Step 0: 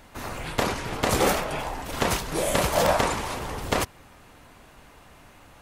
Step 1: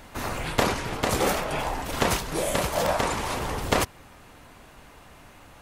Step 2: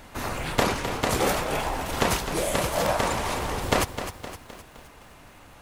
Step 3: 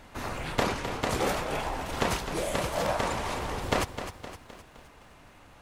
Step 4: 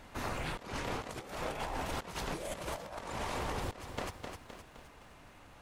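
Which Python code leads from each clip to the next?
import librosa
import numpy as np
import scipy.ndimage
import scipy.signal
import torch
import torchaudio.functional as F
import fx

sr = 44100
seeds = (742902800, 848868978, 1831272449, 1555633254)

y1 = fx.rider(x, sr, range_db=4, speed_s=0.5)
y2 = fx.echo_crushed(y1, sr, ms=258, feedback_pct=55, bits=8, wet_db=-10)
y3 = fx.high_shelf(y2, sr, hz=10000.0, db=-9.0)
y3 = y3 * librosa.db_to_amplitude(-4.0)
y4 = fx.over_compress(y3, sr, threshold_db=-33.0, ratio=-0.5)
y4 = y4 * librosa.db_to_amplitude(-5.5)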